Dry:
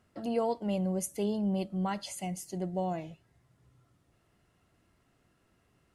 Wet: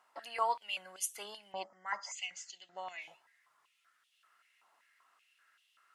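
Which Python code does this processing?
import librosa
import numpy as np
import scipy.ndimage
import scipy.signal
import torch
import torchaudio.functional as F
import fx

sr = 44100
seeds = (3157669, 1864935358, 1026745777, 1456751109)

y = fx.spec_box(x, sr, start_s=1.63, length_s=0.52, low_hz=2200.0, high_hz=4800.0, gain_db=-20)
y = fx.ellip_lowpass(y, sr, hz=7200.0, order=4, stop_db=40, at=(1.52, 3.02))
y = fx.filter_held_highpass(y, sr, hz=5.2, low_hz=920.0, high_hz=3100.0)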